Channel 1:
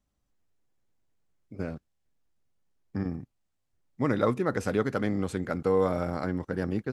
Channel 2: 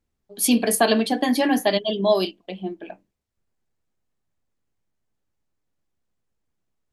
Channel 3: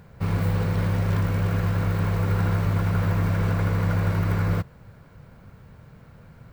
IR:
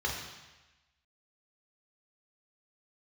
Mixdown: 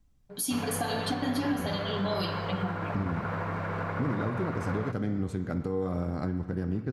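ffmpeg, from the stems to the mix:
-filter_complex "[0:a]volume=1,asplit=2[s0][s1];[s1]volume=0.106[s2];[1:a]equalizer=f=380:w=0.81:g=-9,aecho=1:1:6.9:0.8,volume=0.944,asplit=2[s3][s4];[s4]volume=0.15[s5];[2:a]bandpass=f=1000:t=q:w=0.83:csg=0,adelay=300,volume=1[s6];[s0][s3]amix=inputs=2:normalize=0,lowshelf=f=180:g=9.5,acompressor=threshold=0.0355:ratio=4,volume=1[s7];[3:a]atrim=start_sample=2205[s8];[s2][s5]amix=inputs=2:normalize=0[s9];[s9][s8]afir=irnorm=-1:irlink=0[s10];[s6][s7][s10]amix=inputs=3:normalize=0,equalizer=f=130:t=o:w=2.2:g=4,alimiter=limit=0.1:level=0:latency=1:release=279"

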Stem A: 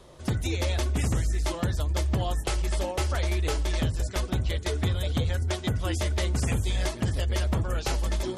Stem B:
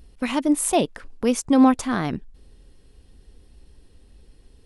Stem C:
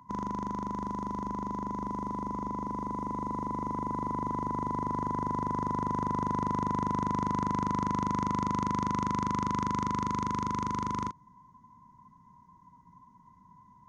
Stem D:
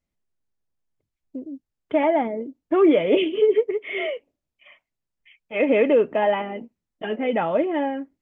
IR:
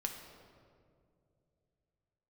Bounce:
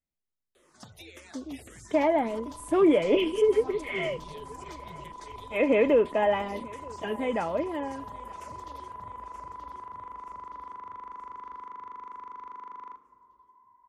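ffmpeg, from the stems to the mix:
-filter_complex "[0:a]asplit=2[s0][s1];[s1]afreqshift=-1.8[s2];[s0][s2]amix=inputs=2:normalize=1,adelay=550,volume=0.596,asplit=2[s3][s4];[s4]volume=0.0891[s5];[1:a]lowshelf=f=210:t=q:w=3:g=10,adelay=2000,volume=0.237,asplit=3[s6][s7][s8];[s7]volume=0.133[s9];[s8]volume=0.0794[s10];[2:a]highpass=230,acrossover=split=380 2600:gain=0.0891 1 0.0708[s11][s12][s13];[s11][s12][s13]amix=inputs=3:normalize=0,adelay=1850,volume=0.75,asplit=2[s14][s15];[s15]volume=0.168[s16];[3:a]dynaudnorm=f=130:g=17:m=3.76,volume=0.282,asplit=2[s17][s18];[s18]volume=0.0668[s19];[s3][s6][s14]amix=inputs=3:normalize=0,highpass=f=540:p=1,acompressor=threshold=0.00562:ratio=6,volume=1[s20];[4:a]atrim=start_sample=2205[s21];[s9][s16]amix=inputs=2:normalize=0[s22];[s22][s21]afir=irnorm=-1:irlink=0[s23];[s5][s10][s19]amix=inputs=3:normalize=0,aecho=0:1:927|1854|2781|3708|4635|5562:1|0.46|0.212|0.0973|0.0448|0.0206[s24];[s17][s20][s23][s24]amix=inputs=4:normalize=0"

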